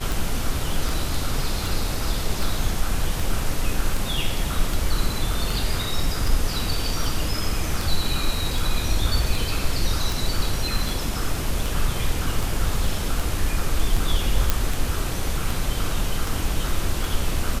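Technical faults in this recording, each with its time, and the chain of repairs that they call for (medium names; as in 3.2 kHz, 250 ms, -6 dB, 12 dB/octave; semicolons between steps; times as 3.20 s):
tick 78 rpm
14.50 s: pop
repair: de-click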